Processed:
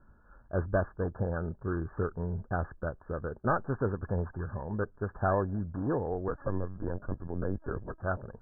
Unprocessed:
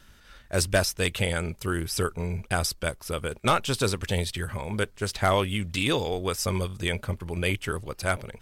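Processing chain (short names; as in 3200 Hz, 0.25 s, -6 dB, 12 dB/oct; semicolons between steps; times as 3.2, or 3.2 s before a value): FFT order left unsorted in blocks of 16 samples; Chebyshev low-pass 1700 Hz, order 10; 6.28–8.02 LPC vocoder at 8 kHz pitch kept; gain -3 dB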